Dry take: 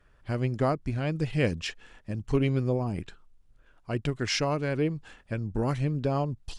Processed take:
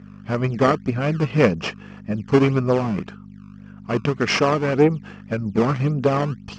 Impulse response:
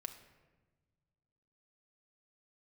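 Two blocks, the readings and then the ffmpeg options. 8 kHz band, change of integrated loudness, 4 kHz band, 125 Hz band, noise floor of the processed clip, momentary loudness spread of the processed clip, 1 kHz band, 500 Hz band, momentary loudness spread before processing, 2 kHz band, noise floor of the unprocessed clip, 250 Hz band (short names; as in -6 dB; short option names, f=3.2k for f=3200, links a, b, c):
+3.0 dB, +8.5 dB, +5.5 dB, +6.0 dB, -41 dBFS, 11 LU, +10.5 dB, +10.0 dB, 10 LU, +9.5 dB, -61 dBFS, +9.0 dB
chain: -filter_complex "[0:a]aeval=exprs='val(0)+0.00631*(sin(2*PI*50*n/s)+sin(2*PI*2*50*n/s)/2+sin(2*PI*3*50*n/s)/3+sin(2*PI*4*50*n/s)/4+sin(2*PI*5*50*n/s)/5)':c=same,aeval=exprs='0.211*(cos(1*acos(clip(val(0)/0.211,-1,1)))-cos(1*PI/2))+0.0531*(cos(2*acos(clip(val(0)/0.211,-1,1)))-cos(2*PI/2))+0.015*(cos(6*acos(clip(val(0)/0.211,-1,1)))-cos(6*PI/2))':c=same,asplit=2[a][b];[b]acrusher=samples=20:mix=1:aa=0.000001:lfo=1:lforange=32:lforate=1.8,volume=-4.5dB[c];[a][c]amix=inputs=2:normalize=0,highpass=130,equalizer=f=200:t=q:w=4:g=7,equalizer=f=440:t=q:w=4:g=4,equalizer=f=1.2k:t=q:w=4:g=7,equalizer=f=2.5k:t=q:w=4:g=3,equalizer=f=3.8k:t=q:w=4:g=-8,lowpass=f=5.8k:w=0.5412,lowpass=f=5.8k:w=1.3066,volume=5dB"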